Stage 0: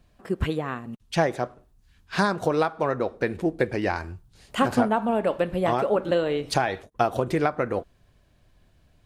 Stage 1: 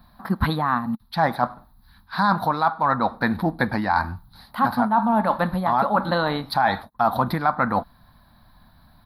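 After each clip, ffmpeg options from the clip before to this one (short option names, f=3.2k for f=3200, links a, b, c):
-af "firequalizer=gain_entry='entry(120,0);entry(220,8);entry(390,-13);entry(860,13);entry(1700,5);entry(2800,-11);entry(4000,11);entry(7000,-28);entry(11000,10)':delay=0.05:min_phase=1,areverse,acompressor=threshold=-21dB:ratio=10,areverse,volume=5dB"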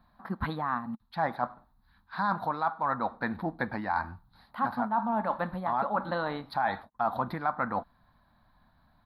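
-af "bass=f=250:g=-4,treble=f=4k:g=-12,volume=-8.5dB"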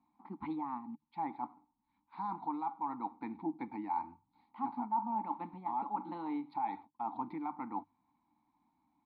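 -filter_complex "[0:a]asplit=3[a][b][c];[a]bandpass=f=300:t=q:w=8,volume=0dB[d];[b]bandpass=f=870:t=q:w=8,volume=-6dB[e];[c]bandpass=f=2.24k:t=q:w=8,volume=-9dB[f];[d][e][f]amix=inputs=3:normalize=0,bandreject=f=50:t=h:w=6,bandreject=f=100:t=h:w=6,bandreject=f=150:t=h:w=6,volume=3.5dB"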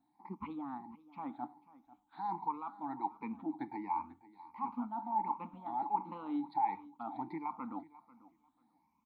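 -af "afftfilt=real='re*pow(10,14/40*sin(2*PI*(0.82*log(max(b,1)*sr/1024/100)/log(2)-(1.4)*(pts-256)/sr)))':imag='im*pow(10,14/40*sin(2*PI*(0.82*log(max(b,1)*sr/1024/100)/log(2)-(1.4)*(pts-256)/sr)))':win_size=1024:overlap=0.75,aecho=1:1:492|984:0.112|0.0202,volume=-2.5dB"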